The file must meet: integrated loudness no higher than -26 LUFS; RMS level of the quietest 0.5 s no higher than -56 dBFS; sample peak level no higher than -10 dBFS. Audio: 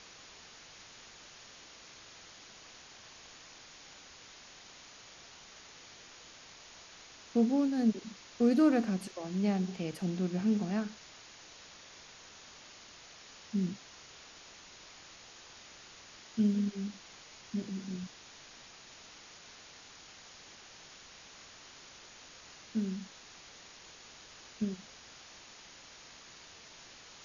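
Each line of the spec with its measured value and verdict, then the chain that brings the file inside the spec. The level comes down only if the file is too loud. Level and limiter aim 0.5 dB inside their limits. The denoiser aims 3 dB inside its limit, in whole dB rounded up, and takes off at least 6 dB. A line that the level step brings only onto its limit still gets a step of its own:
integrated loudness -33.0 LUFS: OK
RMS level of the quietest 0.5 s -54 dBFS: fail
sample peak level -17.0 dBFS: OK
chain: denoiser 6 dB, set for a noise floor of -54 dBFS

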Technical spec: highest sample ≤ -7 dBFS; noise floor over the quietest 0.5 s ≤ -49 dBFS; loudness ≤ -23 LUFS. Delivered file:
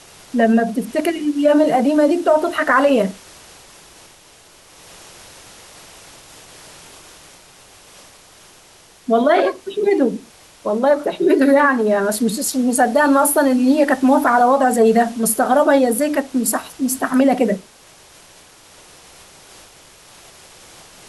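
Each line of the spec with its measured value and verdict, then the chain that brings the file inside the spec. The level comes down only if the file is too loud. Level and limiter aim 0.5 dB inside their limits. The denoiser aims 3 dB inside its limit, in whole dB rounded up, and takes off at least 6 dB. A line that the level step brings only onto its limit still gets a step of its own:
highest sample -4.5 dBFS: fail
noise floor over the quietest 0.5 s -47 dBFS: fail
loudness -16.0 LUFS: fail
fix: gain -7.5 dB

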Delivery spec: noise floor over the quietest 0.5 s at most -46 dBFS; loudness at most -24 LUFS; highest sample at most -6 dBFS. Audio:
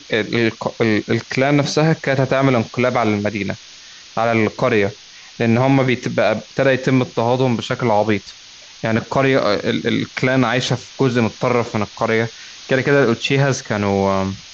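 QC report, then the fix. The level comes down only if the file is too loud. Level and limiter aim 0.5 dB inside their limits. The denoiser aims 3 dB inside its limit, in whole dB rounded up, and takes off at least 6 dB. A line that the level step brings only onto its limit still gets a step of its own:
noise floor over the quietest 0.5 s -41 dBFS: fail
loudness -18.0 LUFS: fail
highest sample -4.0 dBFS: fail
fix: gain -6.5 dB

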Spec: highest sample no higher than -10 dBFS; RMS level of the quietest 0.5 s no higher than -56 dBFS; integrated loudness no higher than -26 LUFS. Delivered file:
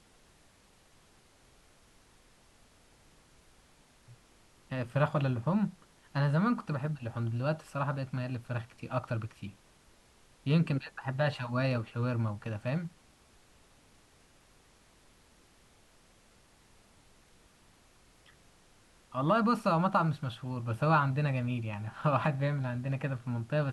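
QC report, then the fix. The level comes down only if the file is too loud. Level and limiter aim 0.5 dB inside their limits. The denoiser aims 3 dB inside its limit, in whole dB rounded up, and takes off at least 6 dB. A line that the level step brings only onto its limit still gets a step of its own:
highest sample -14.5 dBFS: OK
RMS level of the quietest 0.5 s -63 dBFS: OK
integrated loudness -32.0 LUFS: OK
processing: none

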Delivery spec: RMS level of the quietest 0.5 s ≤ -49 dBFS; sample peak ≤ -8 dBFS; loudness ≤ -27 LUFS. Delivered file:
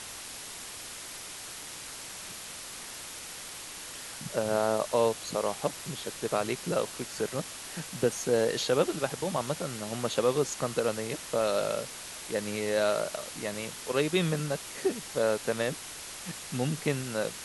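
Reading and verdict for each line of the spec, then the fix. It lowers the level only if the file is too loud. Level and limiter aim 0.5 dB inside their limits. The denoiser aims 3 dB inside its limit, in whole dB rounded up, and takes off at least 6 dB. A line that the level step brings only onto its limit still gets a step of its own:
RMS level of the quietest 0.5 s -42 dBFS: fail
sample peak -12.0 dBFS: OK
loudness -31.5 LUFS: OK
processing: denoiser 10 dB, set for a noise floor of -42 dBFS

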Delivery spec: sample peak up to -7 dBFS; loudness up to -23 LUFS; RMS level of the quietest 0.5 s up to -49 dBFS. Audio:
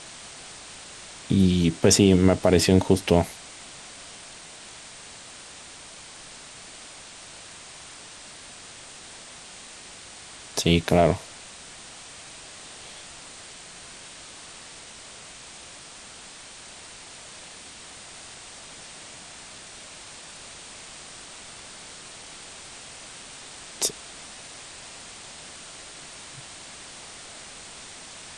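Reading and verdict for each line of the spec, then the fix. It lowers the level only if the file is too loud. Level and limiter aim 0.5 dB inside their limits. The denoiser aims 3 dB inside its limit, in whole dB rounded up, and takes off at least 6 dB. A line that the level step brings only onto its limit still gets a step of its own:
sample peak -5.0 dBFS: fail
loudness -21.0 LUFS: fail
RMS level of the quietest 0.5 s -44 dBFS: fail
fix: denoiser 6 dB, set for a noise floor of -44 dBFS; gain -2.5 dB

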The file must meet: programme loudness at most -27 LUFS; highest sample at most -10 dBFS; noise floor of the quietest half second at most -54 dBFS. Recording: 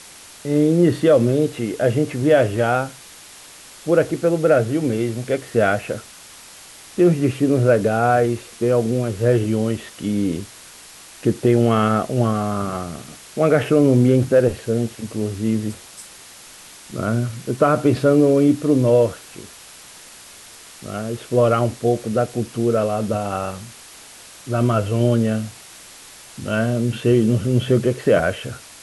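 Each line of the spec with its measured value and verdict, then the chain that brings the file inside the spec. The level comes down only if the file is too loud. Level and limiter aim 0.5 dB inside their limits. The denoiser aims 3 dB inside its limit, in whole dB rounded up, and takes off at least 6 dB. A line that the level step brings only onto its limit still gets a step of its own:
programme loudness -19.0 LUFS: fail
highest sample -5.0 dBFS: fail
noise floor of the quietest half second -42 dBFS: fail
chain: denoiser 7 dB, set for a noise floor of -42 dBFS; gain -8.5 dB

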